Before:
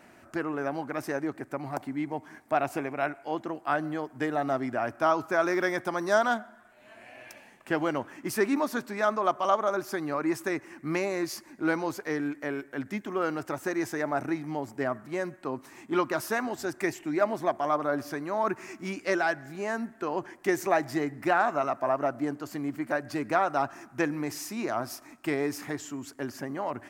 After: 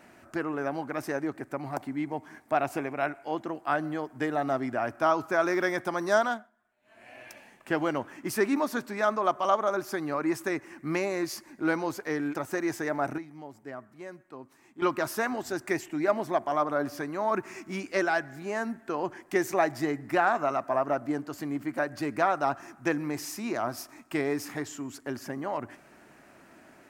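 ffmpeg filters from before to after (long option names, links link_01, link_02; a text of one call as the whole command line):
ffmpeg -i in.wav -filter_complex "[0:a]asplit=6[link_01][link_02][link_03][link_04][link_05][link_06];[link_01]atrim=end=6.5,asetpts=PTS-STARTPTS,afade=type=out:start_time=6.19:duration=0.31:silence=0.125893[link_07];[link_02]atrim=start=6.5:end=6.82,asetpts=PTS-STARTPTS,volume=-18dB[link_08];[link_03]atrim=start=6.82:end=12.352,asetpts=PTS-STARTPTS,afade=type=in:duration=0.31:silence=0.125893[link_09];[link_04]atrim=start=13.478:end=14.312[link_10];[link_05]atrim=start=14.308:end=15.952,asetpts=PTS-STARTPTS,volume=-11dB[link_11];[link_06]atrim=start=15.948[link_12];[link_07][link_08][link_09]concat=n=3:v=0:a=1[link_13];[link_13][link_10]acrossfade=duration=0.004:curve1=hsin:curve2=hsin[link_14];[link_14][link_11]acrossfade=duration=0.004:curve1=hsin:curve2=hsin[link_15];[link_15][link_12]acrossfade=duration=0.004:curve1=hsin:curve2=hsin" out.wav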